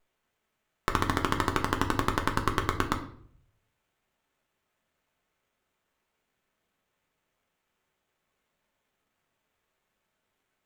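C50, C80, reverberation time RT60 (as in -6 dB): 10.5 dB, 14.5 dB, 0.60 s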